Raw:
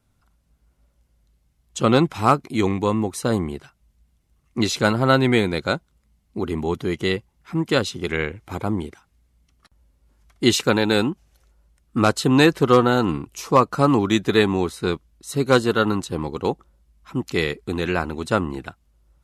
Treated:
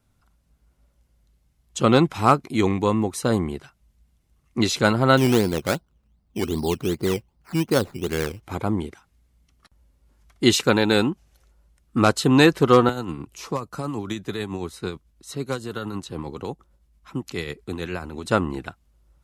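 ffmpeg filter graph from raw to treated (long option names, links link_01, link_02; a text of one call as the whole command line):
ffmpeg -i in.wav -filter_complex "[0:a]asettb=1/sr,asplit=3[link_01][link_02][link_03];[link_01]atrim=end=5.174[link_04];[link_02]atrim=start=5.17:end=8.43,asetpts=PTS-STARTPTS,afade=type=in:duration=0.004:curve=qsin,afade=type=out:start_time=3.256:duration=0.004:curve=qsin,lowpass=1500,acrusher=samples=13:mix=1:aa=0.000001:lfo=1:lforange=7.8:lforate=2.6[link_05];[link_03]atrim=start=8.426[link_06];[link_04][link_05]acrossfade=duration=0.004:curve1=hsin:curve2=qsin[link_07];[link_07][link_06]acrossfade=duration=0.004:curve1=qsin:curve2=hsin,asettb=1/sr,asplit=3[link_08][link_09][link_10];[link_08]atrim=end=12.894[link_11];[link_09]atrim=start=12.89:end=18.26,asetpts=PTS-STARTPTS,afade=type=in:duration=0.004:curve=qsin,afade=type=out:start_time=5.366:duration=0.004:curve=qsin,acrossover=split=150|5900[link_12][link_13][link_14];[link_12]acompressor=threshold=-34dB:ratio=4[link_15];[link_13]acompressor=threshold=-26dB:ratio=4[link_16];[link_14]acompressor=threshold=-43dB:ratio=4[link_17];[link_15][link_16][link_17]amix=inputs=3:normalize=0,tremolo=f=9.1:d=0.44[link_18];[link_10]atrim=start=18.256[link_19];[link_11][link_18]acrossfade=duration=0.004:curve1=hsin:curve2=qsin[link_20];[link_20][link_19]acrossfade=duration=0.004:curve1=qsin:curve2=hsin" out.wav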